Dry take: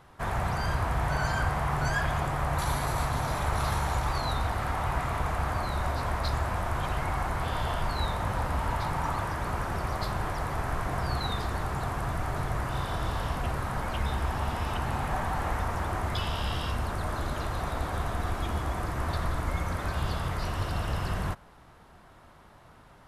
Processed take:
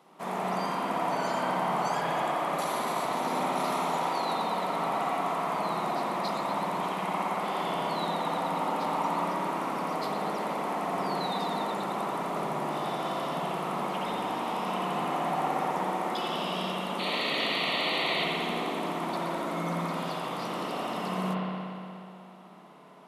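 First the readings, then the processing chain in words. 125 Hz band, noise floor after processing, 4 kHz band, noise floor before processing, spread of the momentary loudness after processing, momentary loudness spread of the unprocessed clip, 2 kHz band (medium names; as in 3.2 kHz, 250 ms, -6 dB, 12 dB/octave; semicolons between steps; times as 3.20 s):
-11.0 dB, -46 dBFS, +5.0 dB, -54 dBFS, 4 LU, 4 LU, -1.0 dB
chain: elliptic high-pass 170 Hz, stop band 40 dB; peaking EQ 1.6 kHz -11.5 dB 0.39 oct; painted sound noise, 16.99–18.24 s, 1.8–4.6 kHz -34 dBFS; in parallel at -10 dB: hard clipper -27.5 dBFS, distortion -21 dB; on the sum: spring tank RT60 2.6 s, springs 59 ms, chirp 70 ms, DRR -4.5 dB; trim -3.5 dB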